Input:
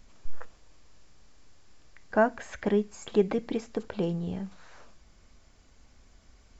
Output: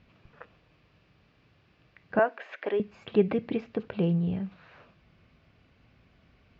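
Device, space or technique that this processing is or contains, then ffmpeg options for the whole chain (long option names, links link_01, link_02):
guitar cabinet: -filter_complex "[0:a]highpass=78,equalizer=frequency=110:width_type=q:width=4:gain=8,equalizer=frequency=160:width_type=q:width=4:gain=7,equalizer=frequency=890:width_type=q:width=4:gain=-4,equalizer=frequency=2600:width_type=q:width=4:gain=7,lowpass=frequency=4300:width=0.5412,lowpass=frequency=4300:width=1.3066,asettb=1/sr,asplit=3[link_01][link_02][link_03];[link_01]atrim=end=2.194[link_04];[link_02]atrim=start=2.19:end=2.8,asetpts=PTS-STARTPTS,afade=type=in:duration=0.004:curve=qsin,afade=type=out:start_time=0.606:duration=0.004:curve=qsin,highpass=frequency=370:width=0.5412,highpass=frequency=370:width=1.3066[link_05];[link_03]atrim=start=2.796[link_06];[link_04][link_05]acrossfade=duration=0.004:curve1=hsin:curve2=qsin[link_07];[link_07][link_06]acrossfade=duration=0.004:curve1=qsin:curve2=hsin,aemphasis=mode=reproduction:type=50fm"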